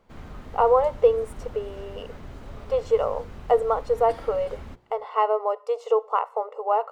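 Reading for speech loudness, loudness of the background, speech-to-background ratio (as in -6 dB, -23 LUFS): -24.5 LUFS, -43.0 LUFS, 18.5 dB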